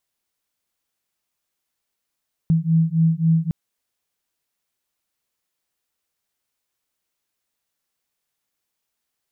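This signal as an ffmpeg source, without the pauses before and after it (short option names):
-f lavfi -i "aevalsrc='0.126*(sin(2*PI*161*t)+sin(2*PI*164.7*t))':d=1.01:s=44100"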